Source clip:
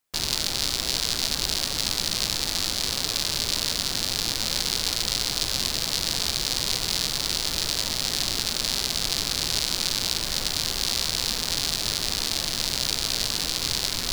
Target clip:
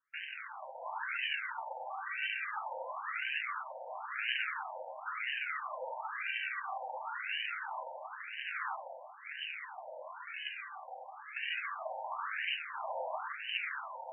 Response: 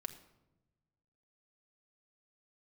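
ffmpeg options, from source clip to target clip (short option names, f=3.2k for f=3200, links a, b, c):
-filter_complex "[0:a]asplit=3[a][b][c];[a]afade=t=out:st=8.74:d=0.02[d];[b]equalizer=f=1.3k:w=0.33:g=-10,afade=t=in:st=8.74:d=0.02,afade=t=out:st=11.35:d=0.02[e];[c]afade=t=in:st=11.35:d=0.02[f];[d][e][f]amix=inputs=3:normalize=0[g];[1:a]atrim=start_sample=2205,asetrate=26019,aresample=44100[h];[g][h]afir=irnorm=-1:irlink=0,aphaser=in_gain=1:out_gain=1:delay=2.6:decay=0.54:speed=0.23:type=sinusoidal,dynaudnorm=f=100:g=9:m=11.5dB,afftfilt=real='re*between(b*sr/1024,680*pow(2200/680,0.5+0.5*sin(2*PI*0.98*pts/sr))/1.41,680*pow(2200/680,0.5+0.5*sin(2*PI*0.98*pts/sr))*1.41)':imag='im*between(b*sr/1024,680*pow(2200/680,0.5+0.5*sin(2*PI*0.98*pts/sr))/1.41,680*pow(2200/680,0.5+0.5*sin(2*PI*0.98*pts/sr))*1.41)':win_size=1024:overlap=0.75,volume=-3.5dB"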